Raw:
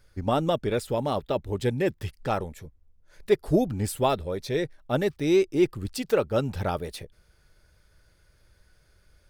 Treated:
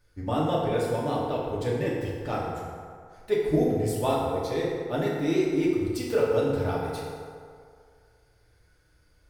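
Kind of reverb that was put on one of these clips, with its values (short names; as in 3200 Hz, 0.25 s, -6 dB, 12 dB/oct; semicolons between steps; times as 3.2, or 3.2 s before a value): FDN reverb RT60 2.2 s, low-frequency decay 0.75×, high-frequency decay 0.5×, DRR -5.5 dB; gain -7.5 dB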